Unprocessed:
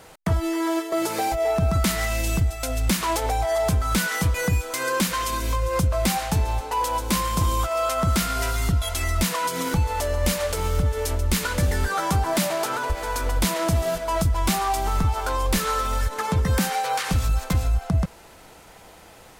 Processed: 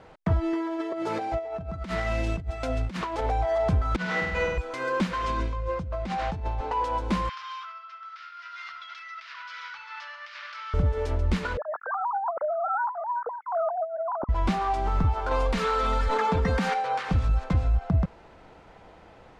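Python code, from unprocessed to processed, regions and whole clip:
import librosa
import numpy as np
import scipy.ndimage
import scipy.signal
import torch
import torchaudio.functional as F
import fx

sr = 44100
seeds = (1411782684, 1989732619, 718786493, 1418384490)

y = fx.chain(x, sr, fx.highpass(hz=62.0, slope=12),
    fx.over_compress(threshold_db=-26.0, ratio=-0.5), at=(0.53, 3.21))
y = fx.chain(y, sr, fx.lowpass(hz=6200.0, slope=12),
    fx.over_compress(threshold_db=-27.0, ratio=-0.5),
    fx.room_flutter(wall_m=8.4, rt60_s=1.1), at=(3.96, 4.58))
y = fx.chain(y, sr, fx.lowpass(hz=7800.0, slope=12),
    fx.over_compress(threshold_db=-27.0, ratio=-1.0), at=(5.24, 6.75))
y = fx.chain(y, sr, fx.ellip_bandpass(low_hz=1300.0, high_hz=5400.0, order=3, stop_db=60),
    fx.over_compress(threshold_db=-36.0, ratio=-1.0),
    fx.echo_tape(ms=70, feedback_pct=67, wet_db=-7.0, lp_hz=1800.0, drive_db=18.0, wow_cents=16), at=(7.29, 10.74))
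y = fx.chain(y, sr, fx.sine_speech(),
    fx.cheby1_lowpass(hz=1400.0, order=5),
    fx.over_compress(threshold_db=-25.0, ratio=-1.0), at=(11.57, 14.29))
y = fx.chain(y, sr, fx.low_shelf(hz=400.0, db=-8.5),
    fx.comb(ms=4.3, depth=0.6),
    fx.env_flatten(amount_pct=100), at=(15.31, 16.74))
y = scipy.signal.sosfilt(scipy.signal.butter(2, 4600.0, 'lowpass', fs=sr, output='sos'), y)
y = fx.high_shelf(y, sr, hz=2700.0, db=-12.0)
y = y * 10.0 ** (-1.5 / 20.0)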